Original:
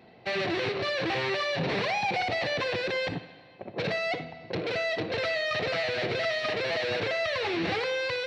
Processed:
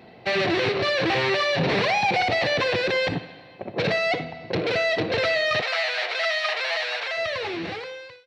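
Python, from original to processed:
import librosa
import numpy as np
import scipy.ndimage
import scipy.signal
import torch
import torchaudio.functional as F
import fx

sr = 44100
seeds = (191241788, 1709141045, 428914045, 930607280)

y = fx.fade_out_tail(x, sr, length_s=1.66)
y = fx.highpass(y, sr, hz=710.0, slope=24, at=(5.6, 7.16), fade=0.02)
y = y * 10.0 ** (6.5 / 20.0)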